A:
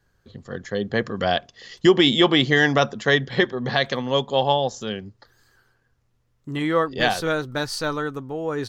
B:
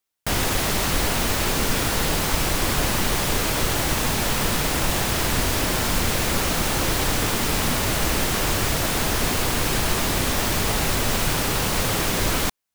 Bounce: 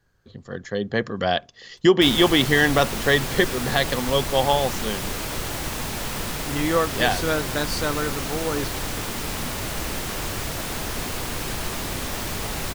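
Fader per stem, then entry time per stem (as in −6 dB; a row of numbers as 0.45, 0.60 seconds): −0.5, −6.5 decibels; 0.00, 1.75 seconds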